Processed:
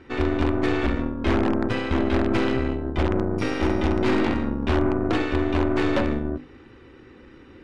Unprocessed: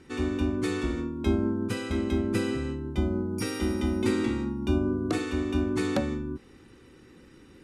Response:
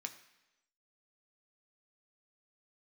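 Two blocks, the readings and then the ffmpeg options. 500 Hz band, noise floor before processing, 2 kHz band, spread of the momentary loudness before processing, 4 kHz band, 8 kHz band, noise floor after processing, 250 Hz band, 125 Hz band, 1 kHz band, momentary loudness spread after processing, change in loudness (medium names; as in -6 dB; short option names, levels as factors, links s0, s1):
+6.0 dB, -54 dBFS, +8.0 dB, 5 LU, +4.5 dB, no reading, -48 dBFS, +4.0 dB, +4.5 dB, +10.5 dB, 4 LU, +5.0 dB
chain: -filter_complex "[0:a]bandreject=f=50:t=h:w=6,bandreject=f=100:t=h:w=6,bandreject=f=150:t=h:w=6,bandreject=f=200:t=h:w=6,bandreject=f=250:t=h:w=6,bandreject=f=300:t=h:w=6,bandreject=f=350:t=h:w=6,bandreject=f=400:t=h:w=6,bandreject=f=450:t=h:w=6,asplit=2[s0][s1];[s1]aeval=exprs='(mod(10.6*val(0)+1,2)-1)/10.6':c=same,volume=0.708[s2];[s0][s2]amix=inputs=2:normalize=0,equalizer=f=170:t=o:w=0.45:g=-9.5,aeval=exprs='0.251*(cos(1*acos(clip(val(0)/0.251,-1,1)))-cos(1*PI/2))+0.0282*(cos(8*acos(clip(val(0)/0.251,-1,1)))-cos(8*PI/2))':c=same,lowpass=2900,volume=1.33"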